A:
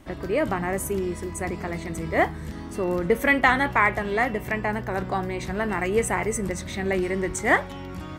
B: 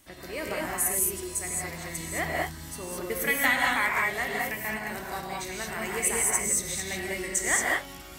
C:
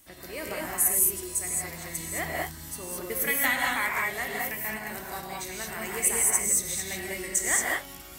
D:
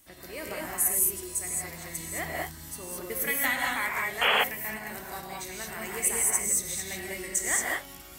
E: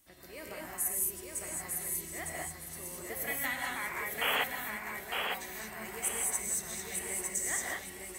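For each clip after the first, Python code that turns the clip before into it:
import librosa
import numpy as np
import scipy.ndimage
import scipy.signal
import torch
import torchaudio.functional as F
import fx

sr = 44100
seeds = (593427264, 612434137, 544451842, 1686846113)

y1 = librosa.effects.preemphasis(x, coef=0.9, zi=[0.0])
y1 = fx.rev_gated(y1, sr, seeds[0], gate_ms=240, shape='rising', drr_db=-3.0)
y1 = y1 * 10.0 ** (4.5 / 20.0)
y2 = fx.high_shelf(y1, sr, hz=9100.0, db=10.5)
y2 = y2 * 10.0 ** (-2.5 / 20.0)
y3 = fx.spec_paint(y2, sr, seeds[1], shape='noise', start_s=4.21, length_s=0.23, low_hz=410.0, high_hz=3400.0, level_db=-21.0)
y3 = y3 * 10.0 ** (-2.0 / 20.0)
y4 = fx.echo_feedback(y3, sr, ms=906, feedback_pct=28, wet_db=-4)
y4 = y4 * 10.0 ** (-7.5 / 20.0)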